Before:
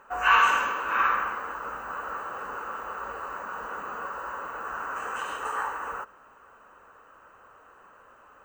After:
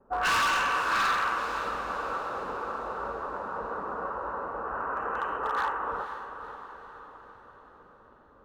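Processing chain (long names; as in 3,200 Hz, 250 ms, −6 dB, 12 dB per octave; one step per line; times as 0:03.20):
noise gate with hold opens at −46 dBFS
low-pass that shuts in the quiet parts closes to 330 Hz, open at −20 dBFS
dynamic equaliser 3,400 Hz, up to +3 dB, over −36 dBFS, Q 0.73
in parallel at +3 dB: downward compressor 6 to 1, threshold −36 dBFS, peak gain reduction 20 dB
on the sum: gain into a clipping stage and back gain 21.5 dB
on a send: feedback delay with all-pass diffusion 496 ms, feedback 54%, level −10 dB
on the sum: level −1.5 dB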